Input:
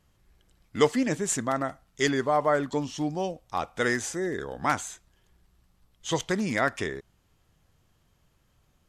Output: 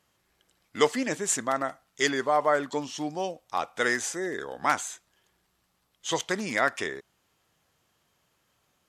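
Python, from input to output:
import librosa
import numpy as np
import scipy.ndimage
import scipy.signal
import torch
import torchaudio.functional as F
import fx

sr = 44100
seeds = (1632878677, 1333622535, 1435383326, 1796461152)

y = fx.highpass(x, sr, hz=480.0, slope=6)
y = F.gain(torch.from_numpy(y), 2.0).numpy()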